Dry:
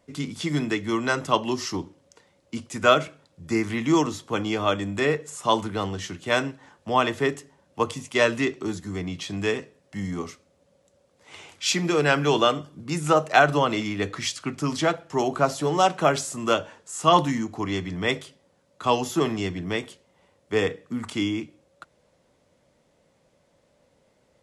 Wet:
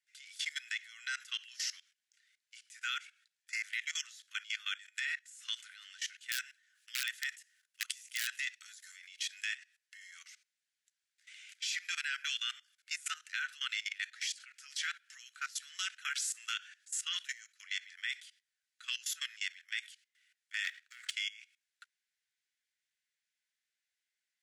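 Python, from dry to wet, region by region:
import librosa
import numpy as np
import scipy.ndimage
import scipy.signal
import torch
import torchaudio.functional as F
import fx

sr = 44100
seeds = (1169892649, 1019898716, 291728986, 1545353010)

y = fx.chain(x, sr, fx.high_shelf(hz=10000.0, db=10.0),
    fx.overflow_wrap(gain_db=12.5), at=(6.31, 9.45))
y = fx.chain(y, sr, fx.lowpass(hz=8300.0, slope=12),
    fx.leveller(passes=2), at=(20.64, 21.11))
y = scipy.signal.sosfilt(scipy.signal.butter(12, 1500.0, 'highpass', fs=sr, output='sos'), y)
y = fx.level_steps(y, sr, step_db=18)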